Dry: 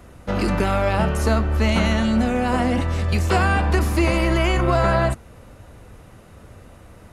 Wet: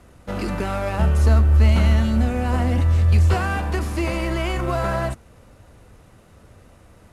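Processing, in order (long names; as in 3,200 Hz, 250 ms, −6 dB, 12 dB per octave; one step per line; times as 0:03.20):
variable-slope delta modulation 64 kbit/s
0:00.99–0:03.34: parametric band 76 Hz +12 dB 1.2 octaves
level −4.5 dB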